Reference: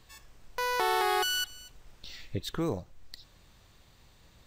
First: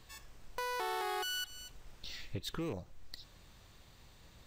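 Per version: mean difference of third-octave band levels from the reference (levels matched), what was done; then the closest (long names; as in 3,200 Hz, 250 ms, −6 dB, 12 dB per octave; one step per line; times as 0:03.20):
6.0 dB: loose part that buzzes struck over −37 dBFS, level −35 dBFS
downward compressor 3 to 1, threshold −35 dBFS, peak gain reduction 8.5 dB
soft clipping −28.5 dBFS, distortion −19 dB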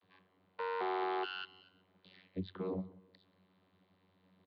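9.0 dB: Butterworth low-pass 4,300 Hz 72 dB per octave
channel vocoder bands 32, saw 93.4 Hz
repeating echo 183 ms, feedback 33%, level −21 dB
level −6.5 dB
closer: first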